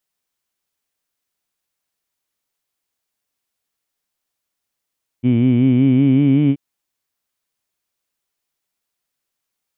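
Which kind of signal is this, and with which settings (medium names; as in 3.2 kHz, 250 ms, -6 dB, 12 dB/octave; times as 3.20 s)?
formant-synthesis vowel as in heed, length 1.33 s, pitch 119 Hz, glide +3.5 st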